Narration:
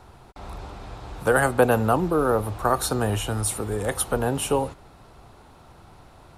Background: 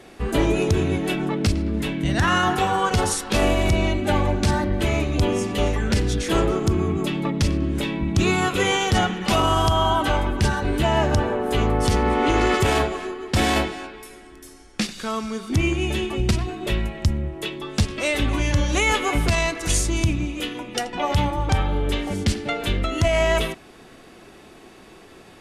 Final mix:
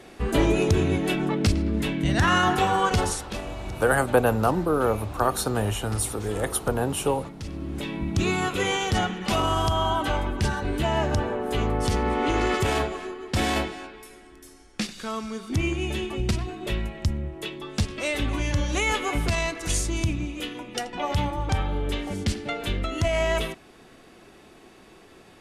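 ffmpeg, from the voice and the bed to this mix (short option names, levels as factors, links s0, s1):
-filter_complex "[0:a]adelay=2550,volume=0.841[s0];[1:a]volume=3.76,afade=t=out:st=2.87:d=0.56:silence=0.158489,afade=t=in:st=7.4:d=0.61:silence=0.237137[s1];[s0][s1]amix=inputs=2:normalize=0"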